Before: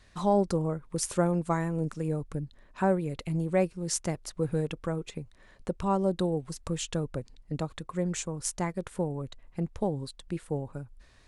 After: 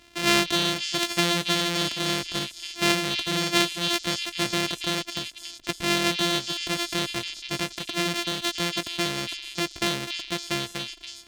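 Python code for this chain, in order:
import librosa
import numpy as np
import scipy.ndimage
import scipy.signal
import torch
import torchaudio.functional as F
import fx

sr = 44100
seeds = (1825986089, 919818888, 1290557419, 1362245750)

p1 = np.r_[np.sort(x[:len(x) // 128 * 128].reshape(-1, 128), axis=1).ravel(), x[len(x) // 128 * 128:]]
p2 = fx.low_shelf(p1, sr, hz=82.0, db=5.5)
p3 = 10.0 ** (-27.5 / 20.0) * (np.abs((p2 / 10.0 ** (-27.5 / 20.0) + 3.0) % 4.0 - 2.0) - 1.0)
p4 = p2 + (p3 * librosa.db_to_amplitude(-8.0))
p5 = fx.weighting(p4, sr, curve='D')
y = fx.echo_stepped(p5, sr, ms=281, hz=3400.0, octaves=0.7, feedback_pct=70, wet_db=-3)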